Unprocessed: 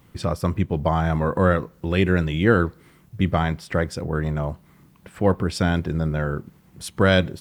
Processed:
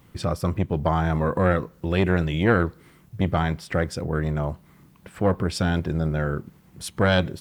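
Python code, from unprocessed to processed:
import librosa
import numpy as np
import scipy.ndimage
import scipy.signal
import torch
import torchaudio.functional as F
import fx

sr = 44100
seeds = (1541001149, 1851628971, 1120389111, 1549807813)

y = fx.transformer_sat(x, sr, knee_hz=490.0)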